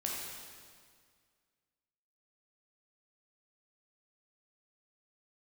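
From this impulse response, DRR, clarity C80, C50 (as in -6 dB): -3.5 dB, 1.0 dB, -0.5 dB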